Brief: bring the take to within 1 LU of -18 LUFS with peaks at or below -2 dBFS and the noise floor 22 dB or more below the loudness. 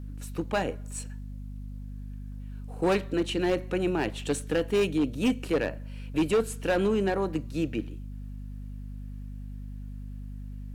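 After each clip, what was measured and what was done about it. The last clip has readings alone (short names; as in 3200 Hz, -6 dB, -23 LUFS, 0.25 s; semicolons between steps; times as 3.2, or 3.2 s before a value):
clipped 1.1%; flat tops at -19.0 dBFS; hum 50 Hz; harmonics up to 250 Hz; hum level -36 dBFS; loudness -28.5 LUFS; peak -19.0 dBFS; loudness target -18.0 LUFS
-> clip repair -19 dBFS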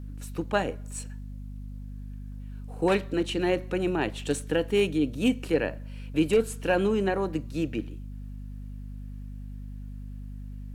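clipped 0.0%; hum 50 Hz; harmonics up to 150 Hz; hum level -36 dBFS
-> de-hum 50 Hz, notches 3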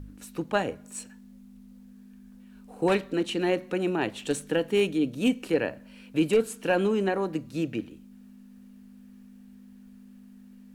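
hum none; loudness -27.5 LUFS; peak -10.0 dBFS; loudness target -18.0 LUFS
-> gain +9.5 dB; limiter -2 dBFS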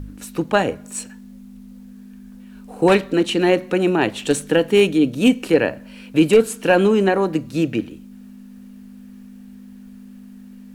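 loudness -18.0 LUFS; peak -2.0 dBFS; noise floor -41 dBFS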